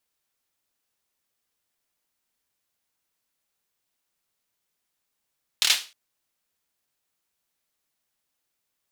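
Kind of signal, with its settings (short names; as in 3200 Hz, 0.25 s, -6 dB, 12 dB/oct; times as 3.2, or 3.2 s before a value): hand clap length 0.31 s, bursts 4, apart 26 ms, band 3400 Hz, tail 0.31 s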